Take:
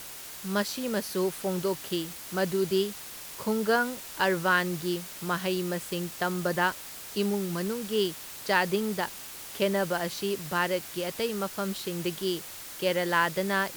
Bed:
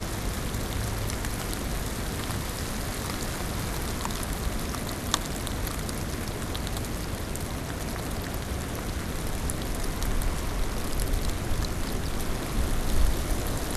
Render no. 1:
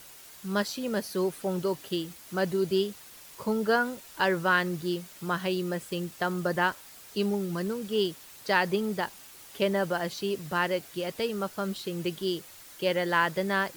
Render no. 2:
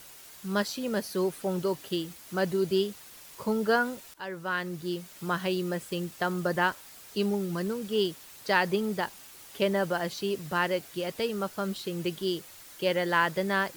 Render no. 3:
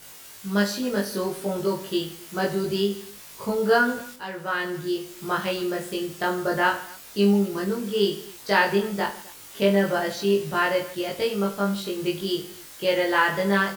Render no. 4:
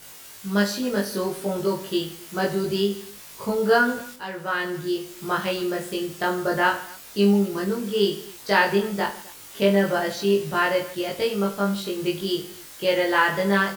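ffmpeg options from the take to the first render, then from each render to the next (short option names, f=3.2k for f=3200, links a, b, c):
-af "afftdn=nr=8:nf=-42"
-filter_complex "[0:a]asplit=2[a][b];[a]atrim=end=4.14,asetpts=PTS-STARTPTS,afade=t=out:st=4.136:d=0.004:c=hsin:silence=0.141254[c];[b]atrim=start=4.14,asetpts=PTS-STARTPTS,afade=t=in:d=1.07:silence=0.141254[d];[c][d]concat=n=2:v=0:a=1"
-filter_complex "[0:a]asplit=2[a][b];[b]adelay=20,volume=-4dB[c];[a][c]amix=inputs=2:normalize=0,aecho=1:1:20|50|95|162.5|263.8:0.631|0.398|0.251|0.158|0.1"
-af "volume=1dB"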